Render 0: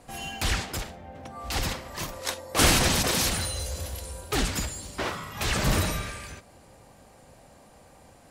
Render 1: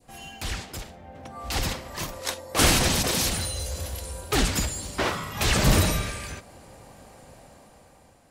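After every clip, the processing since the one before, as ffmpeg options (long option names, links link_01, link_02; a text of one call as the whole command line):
ffmpeg -i in.wav -af "adynamicequalizer=threshold=0.00794:dfrequency=1400:dqfactor=0.9:tfrequency=1400:tqfactor=0.9:attack=5:release=100:ratio=0.375:range=2:mode=cutabove:tftype=bell,dynaudnorm=framelen=370:gausssize=7:maxgain=12.5dB,volume=-5.5dB" out.wav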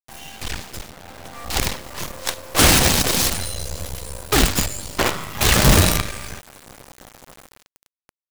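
ffmpeg -i in.wav -filter_complex "[0:a]asplit=2[link_01][link_02];[link_02]asoftclip=type=hard:threshold=-21.5dB,volume=-10dB[link_03];[link_01][link_03]amix=inputs=2:normalize=0,acrusher=bits=4:dc=4:mix=0:aa=0.000001,volume=4dB" out.wav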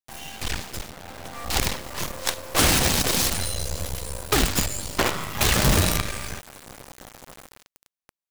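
ffmpeg -i in.wav -af "acompressor=threshold=-17dB:ratio=3" out.wav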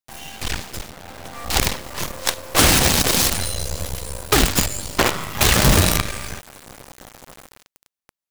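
ffmpeg -i in.wav -af "aeval=exprs='0.501*(cos(1*acos(clip(val(0)/0.501,-1,1)))-cos(1*PI/2))+0.0224*(cos(7*acos(clip(val(0)/0.501,-1,1)))-cos(7*PI/2))':channel_layout=same,volume=5dB" out.wav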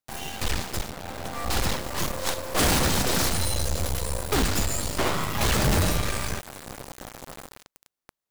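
ffmpeg -i in.wav -filter_complex "[0:a]asplit=2[link_01][link_02];[link_02]acrusher=samples=14:mix=1:aa=0.000001,volume=-8.5dB[link_03];[link_01][link_03]amix=inputs=2:normalize=0,volume=18.5dB,asoftclip=hard,volume=-18.5dB" out.wav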